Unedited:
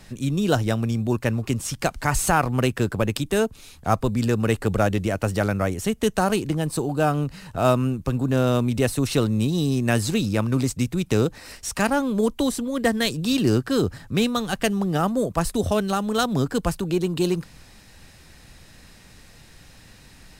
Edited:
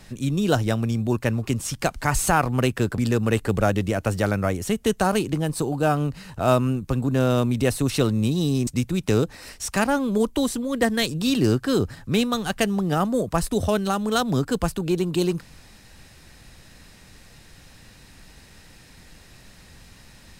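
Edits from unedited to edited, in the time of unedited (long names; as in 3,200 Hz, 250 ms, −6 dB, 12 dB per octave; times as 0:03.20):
0:02.98–0:04.15: remove
0:09.84–0:10.70: remove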